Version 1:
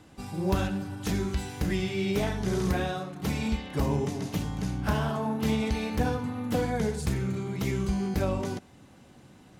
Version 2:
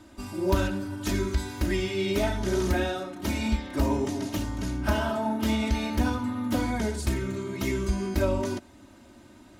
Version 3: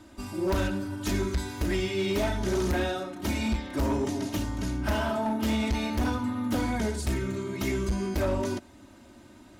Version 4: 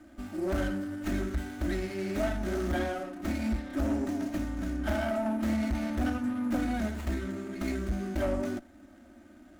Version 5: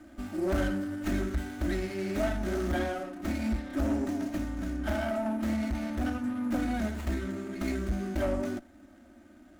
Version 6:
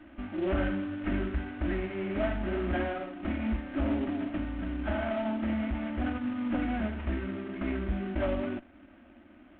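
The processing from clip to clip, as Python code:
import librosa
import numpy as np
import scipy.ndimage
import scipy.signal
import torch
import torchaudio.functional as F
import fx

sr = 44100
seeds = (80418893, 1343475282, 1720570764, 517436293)

y1 = x + 0.96 * np.pad(x, (int(3.2 * sr / 1000.0), 0))[:len(x)]
y2 = np.clip(10.0 ** (22.0 / 20.0) * y1, -1.0, 1.0) / 10.0 ** (22.0 / 20.0)
y3 = fx.fixed_phaser(y2, sr, hz=660.0, stages=8)
y3 = fx.running_max(y3, sr, window=9)
y4 = fx.rider(y3, sr, range_db=3, speed_s=2.0)
y5 = fx.cvsd(y4, sr, bps=16000)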